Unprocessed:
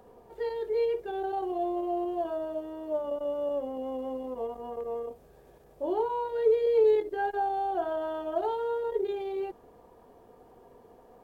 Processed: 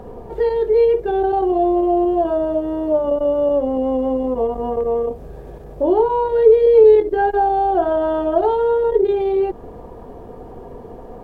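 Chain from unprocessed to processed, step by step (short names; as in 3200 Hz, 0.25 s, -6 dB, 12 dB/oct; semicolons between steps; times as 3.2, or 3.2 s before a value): tilt -2.5 dB/oct; in parallel at +2 dB: compressor, threshold -36 dBFS, peak gain reduction 18 dB; on the sum: gain +8.5 dB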